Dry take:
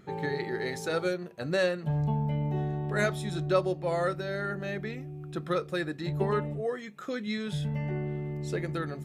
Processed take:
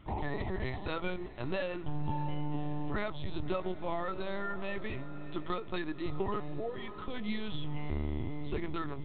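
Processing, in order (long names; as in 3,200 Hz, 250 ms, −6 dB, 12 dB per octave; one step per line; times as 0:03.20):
linear-prediction vocoder at 8 kHz pitch kept
thirty-one-band graphic EQ 160 Hz −10 dB, 250 Hz −4 dB, 500 Hz −11 dB, 1,000 Hz +5 dB, 1,600 Hz −9 dB, 3,150 Hz +6 dB
feedback delay with all-pass diffusion 608 ms, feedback 48%, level −16 dB
downward compressor, threshold −29 dBFS, peak gain reduction 7.5 dB
parametric band 110 Hz +3.5 dB 2.6 octaves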